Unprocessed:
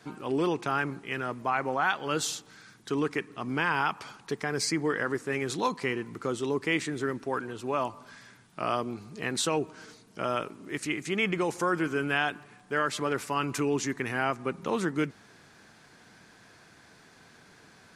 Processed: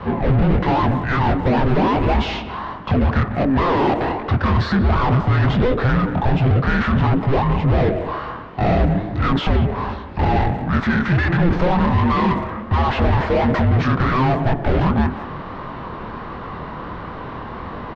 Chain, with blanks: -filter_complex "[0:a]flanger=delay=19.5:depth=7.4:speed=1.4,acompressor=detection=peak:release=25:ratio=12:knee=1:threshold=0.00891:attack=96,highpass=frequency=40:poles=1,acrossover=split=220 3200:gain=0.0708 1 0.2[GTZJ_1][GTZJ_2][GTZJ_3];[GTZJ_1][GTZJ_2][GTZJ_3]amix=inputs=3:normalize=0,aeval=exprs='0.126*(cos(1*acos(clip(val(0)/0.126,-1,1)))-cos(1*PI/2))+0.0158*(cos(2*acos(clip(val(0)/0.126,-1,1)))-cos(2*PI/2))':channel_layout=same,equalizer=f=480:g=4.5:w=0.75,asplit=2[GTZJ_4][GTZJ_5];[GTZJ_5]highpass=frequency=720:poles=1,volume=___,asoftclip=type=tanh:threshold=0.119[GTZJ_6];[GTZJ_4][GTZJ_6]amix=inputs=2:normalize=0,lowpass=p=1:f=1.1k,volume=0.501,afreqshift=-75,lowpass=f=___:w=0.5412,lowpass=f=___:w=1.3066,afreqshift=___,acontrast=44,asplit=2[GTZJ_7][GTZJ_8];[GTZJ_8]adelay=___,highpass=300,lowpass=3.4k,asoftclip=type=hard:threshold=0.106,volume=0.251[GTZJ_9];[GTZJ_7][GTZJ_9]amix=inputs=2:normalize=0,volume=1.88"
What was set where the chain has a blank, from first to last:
28.2, 5k, 5k, -450, 180